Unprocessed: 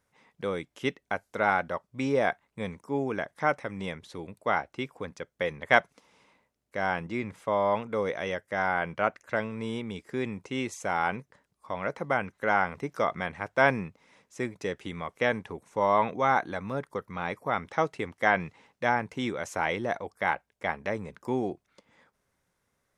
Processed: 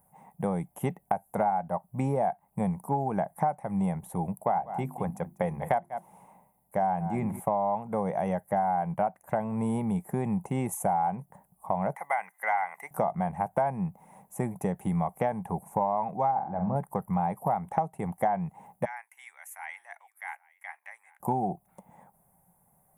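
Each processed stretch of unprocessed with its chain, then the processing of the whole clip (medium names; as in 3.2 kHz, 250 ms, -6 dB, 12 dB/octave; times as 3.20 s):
4.34–7.40 s: hum notches 50/100/150/200/250/300/350 Hz + delay 194 ms -17 dB
11.95–12.91 s: high-pass 1.3 kHz + peaking EQ 2 kHz +15 dB 0.3 oct
16.31–16.76 s: tape spacing loss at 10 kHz 43 dB + flutter echo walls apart 7.7 m, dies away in 0.36 s
18.85–21.20 s: ladder high-pass 1.7 kHz, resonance 55% + delay 818 ms -23.5 dB
whole clip: FFT filter 100 Hz 0 dB, 180 Hz +11 dB, 270 Hz -5 dB, 500 Hz -4 dB, 790 Hz +13 dB, 1.3 kHz -10 dB, 2.1 kHz -12 dB, 4.7 kHz -26 dB, 11 kHz +14 dB; compression 10:1, threshold -30 dBFS; trim +6 dB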